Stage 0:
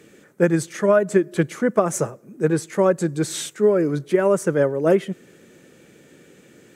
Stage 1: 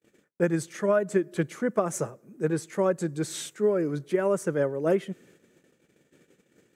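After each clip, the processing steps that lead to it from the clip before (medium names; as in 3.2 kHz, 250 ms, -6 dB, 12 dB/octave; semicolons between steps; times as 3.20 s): gate -48 dBFS, range -36 dB; trim -7 dB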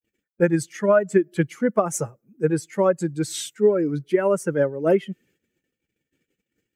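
expander on every frequency bin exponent 1.5; trim +7.5 dB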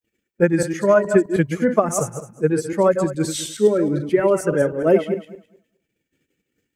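backward echo that repeats 105 ms, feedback 40%, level -7 dB; trim +2.5 dB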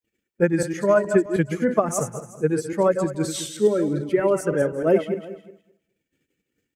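delay 364 ms -20 dB; trim -3 dB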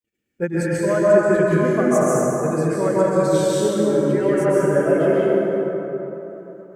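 plate-style reverb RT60 3.7 s, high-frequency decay 0.4×, pre-delay 115 ms, DRR -7.5 dB; trim -4.5 dB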